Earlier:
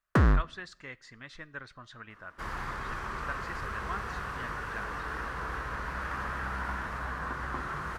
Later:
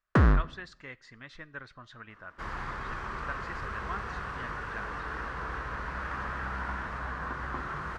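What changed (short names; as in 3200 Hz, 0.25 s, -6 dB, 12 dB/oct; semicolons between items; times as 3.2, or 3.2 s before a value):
first sound: send +8.0 dB; master: add air absorption 65 m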